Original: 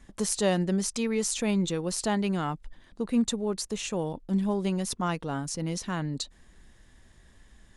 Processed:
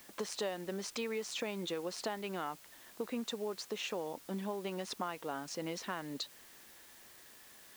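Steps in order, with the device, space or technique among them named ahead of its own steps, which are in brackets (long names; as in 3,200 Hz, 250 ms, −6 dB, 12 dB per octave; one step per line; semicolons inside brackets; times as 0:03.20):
baby monitor (band-pass filter 390–3,800 Hz; downward compressor, threshold −36 dBFS, peak gain reduction 13.5 dB; white noise bed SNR 17 dB)
level +1 dB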